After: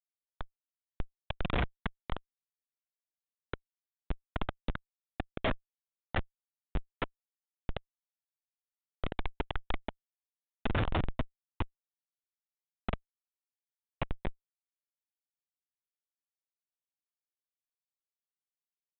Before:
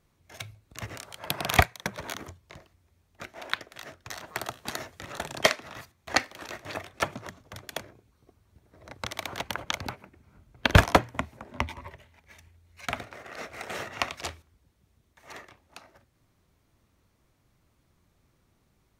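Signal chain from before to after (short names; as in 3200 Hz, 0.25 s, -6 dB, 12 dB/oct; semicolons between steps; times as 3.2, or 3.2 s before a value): gate -46 dBFS, range -10 dB; spectral noise reduction 28 dB; spring tank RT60 3.8 s, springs 42 ms, chirp 75 ms, DRR 14 dB; Schmitt trigger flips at -24 dBFS; downsampling 8000 Hz; gain +5.5 dB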